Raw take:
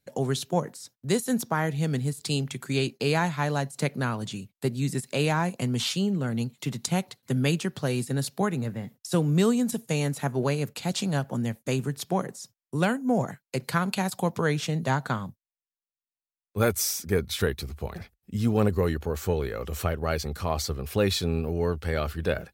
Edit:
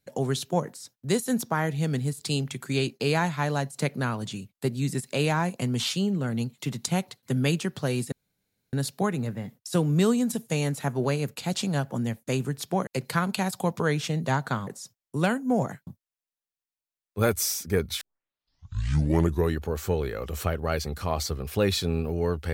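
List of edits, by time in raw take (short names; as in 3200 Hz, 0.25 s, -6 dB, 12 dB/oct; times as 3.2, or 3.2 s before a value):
8.12 insert room tone 0.61 s
12.26–13.46 move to 15.26
17.4 tape start 1.52 s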